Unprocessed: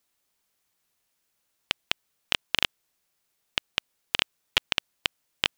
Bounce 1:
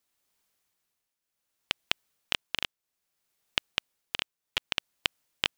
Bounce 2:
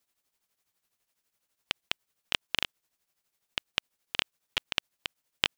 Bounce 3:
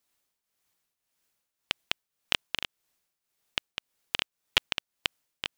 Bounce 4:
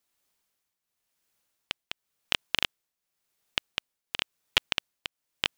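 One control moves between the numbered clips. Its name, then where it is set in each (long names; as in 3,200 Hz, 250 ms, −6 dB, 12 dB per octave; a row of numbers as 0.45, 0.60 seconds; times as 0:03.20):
shaped tremolo, speed: 0.63, 12, 1.8, 0.93 Hertz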